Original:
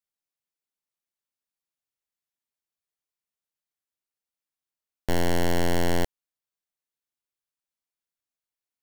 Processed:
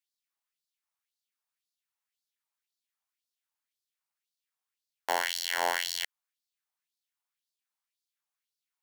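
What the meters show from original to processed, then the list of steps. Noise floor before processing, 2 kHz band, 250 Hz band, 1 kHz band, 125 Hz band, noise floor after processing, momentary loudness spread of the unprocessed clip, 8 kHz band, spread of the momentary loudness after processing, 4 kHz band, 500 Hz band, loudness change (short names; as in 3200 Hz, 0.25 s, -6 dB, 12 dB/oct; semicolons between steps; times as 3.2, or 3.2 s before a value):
under -85 dBFS, +2.0 dB, -24.0 dB, 0.0 dB, under -35 dB, under -85 dBFS, 8 LU, +1.5 dB, 9 LU, +3.5 dB, -10.0 dB, -3.5 dB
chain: LFO high-pass sine 1.9 Hz 820–4500 Hz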